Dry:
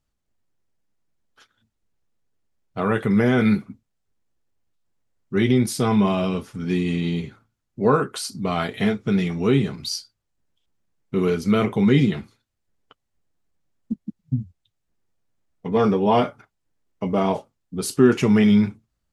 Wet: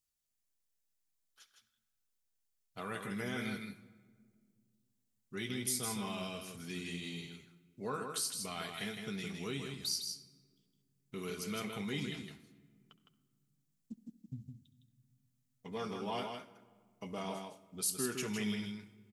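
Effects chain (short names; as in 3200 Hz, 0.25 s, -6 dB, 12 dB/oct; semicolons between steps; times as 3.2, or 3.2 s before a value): pre-emphasis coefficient 0.9; in parallel at +2 dB: compressor, threshold -42 dBFS, peak gain reduction 16 dB; on the sum: echo 0.16 s -5.5 dB; reverb RT60 1.9 s, pre-delay 67 ms, DRR 15.5 dB; gain -7 dB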